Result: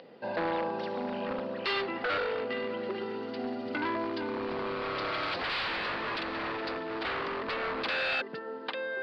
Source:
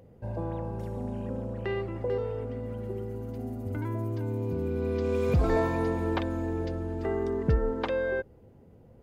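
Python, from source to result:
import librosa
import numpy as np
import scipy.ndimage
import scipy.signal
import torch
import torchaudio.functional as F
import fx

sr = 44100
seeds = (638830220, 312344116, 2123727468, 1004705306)

y = scipy.signal.sosfilt(scipy.signal.butter(4, 200.0, 'highpass', fs=sr, output='sos'), x)
y = fx.high_shelf(y, sr, hz=2300.0, db=11.5)
y = fx.notch(y, sr, hz=2200.0, q=15.0)
y = y + 10.0 ** (-12.0 / 20.0) * np.pad(y, (int(849 * sr / 1000.0), 0))[:len(y)]
y = 10.0 ** (-30.0 / 20.0) * (np.abs((y / 10.0 ** (-30.0 / 20.0) + 3.0) % 4.0 - 2.0) - 1.0)
y = scipy.signal.sosfilt(scipy.signal.ellip(4, 1.0, 40, 4600.0, 'lowpass', fs=sr, output='sos'), y)
y = fx.low_shelf(y, sr, hz=500.0, db=-11.0)
y = 10.0 ** (-23.5 / 20.0) * np.tanh(y / 10.0 ** (-23.5 / 20.0))
y = fx.rider(y, sr, range_db=5, speed_s=2.0)
y = F.gain(torch.from_numpy(y), 7.5).numpy()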